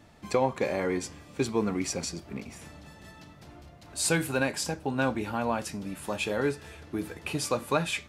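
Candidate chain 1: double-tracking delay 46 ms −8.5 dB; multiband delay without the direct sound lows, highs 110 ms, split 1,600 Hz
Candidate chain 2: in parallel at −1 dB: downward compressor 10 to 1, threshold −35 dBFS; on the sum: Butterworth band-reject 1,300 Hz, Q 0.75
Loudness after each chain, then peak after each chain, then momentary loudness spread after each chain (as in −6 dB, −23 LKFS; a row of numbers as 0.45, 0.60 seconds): −30.5, −29.5 LKFS; −11.5, −11.5 dBFS; 20, 18 LU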